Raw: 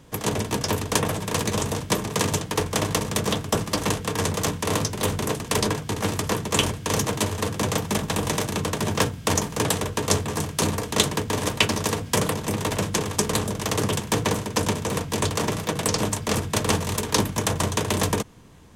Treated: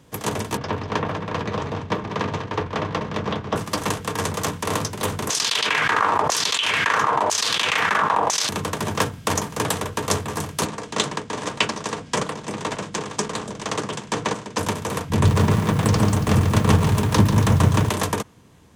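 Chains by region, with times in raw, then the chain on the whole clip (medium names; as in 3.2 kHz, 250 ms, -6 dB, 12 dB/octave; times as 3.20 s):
0.57–3.56 s: distance through air 230 m + delay 195 ms -9.5 dB
5.30–8.49 s: LFO band-pass saw down 1 Hz 690–6300 Hz + level flattener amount 100%
10.65–14.58 s: low-pass 8.3 kHz 24 dB/octave + peaking EQ 89 Hz -15 dB 0.42 oct + tremolo saw up 1.9 Hz, depth 40%
15.10–17.89 s: tone controls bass +14 dB, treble -5 dB + bit-crushed delay 141 ms, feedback 55%, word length 6-bit, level -6.5 dB
whole clip: high-pass 62 Hz; dynamic bell 1.2 kHz, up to +5 dB, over -37 dBFS, Q 0.96; trim -1.5 dB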